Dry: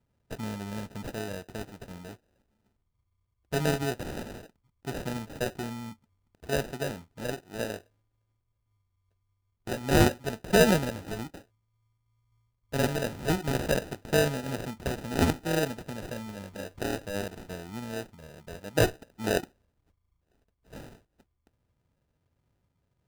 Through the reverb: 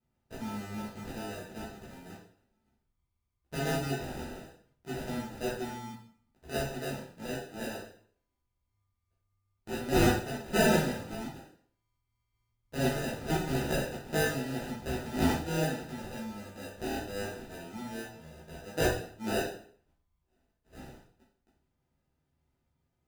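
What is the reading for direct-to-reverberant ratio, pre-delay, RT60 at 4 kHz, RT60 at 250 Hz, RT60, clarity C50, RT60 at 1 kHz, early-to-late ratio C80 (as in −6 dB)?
−8.5 dB, 6 ms, 0.50 s, 0.60 s, 0.55 s, 4.0 dB, 0.55 s, 8.5 dB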